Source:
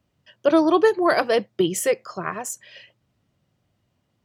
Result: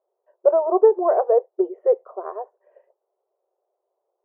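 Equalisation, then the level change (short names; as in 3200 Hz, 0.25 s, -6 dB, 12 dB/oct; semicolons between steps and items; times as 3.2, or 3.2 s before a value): brick-wall FIR high-pass 360 Hz; inverse Chebyshev low-pass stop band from 3700 Hz, stop band 70 dB; +3.5 dB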